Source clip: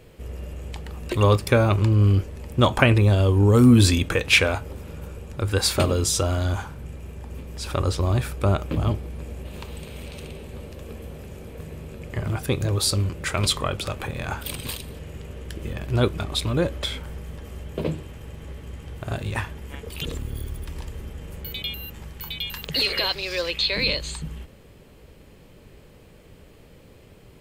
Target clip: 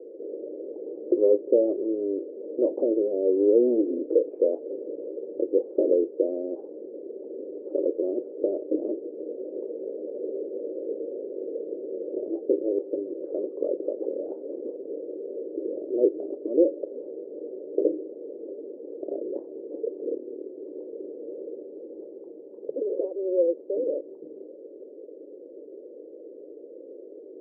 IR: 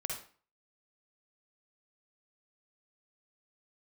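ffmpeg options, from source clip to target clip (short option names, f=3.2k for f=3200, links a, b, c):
-filter_complex "[0:a]asplit=2[a][b];[b]acompressor=threshold=-32dB:ratio=6,volume=3dB[c];[a][c]amix=inputs=2:normalize=0,asoftclip=type=tanh:threshold=-13dB,asuperpass=centerf=410:order=8:qfactor=1.6,volume=5dB"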